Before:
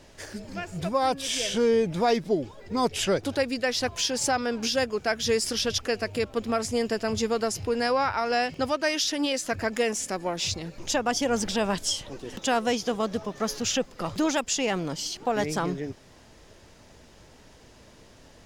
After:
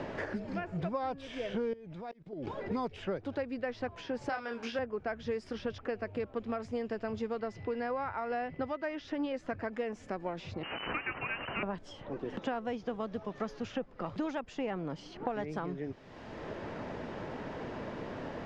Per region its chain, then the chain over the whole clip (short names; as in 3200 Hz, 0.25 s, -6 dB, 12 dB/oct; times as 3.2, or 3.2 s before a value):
1.73–2.47 level quantiser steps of 20 dB + auto swell 0.727 s
4.29–4.79 tilt +4.5 dB/oct + doubler 26 ms -5 dB
7.39–9.03 whine 2000 Hz -48 dBFS + air absorption 90 m
10.63–11.63 delta modulation 32 kbps, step -25.5 dBFS + inverted band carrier 3000 Hz
whole clip: LPF 1700 Hz 12 dB/oct; three-band squash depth 100%; gain -9 dB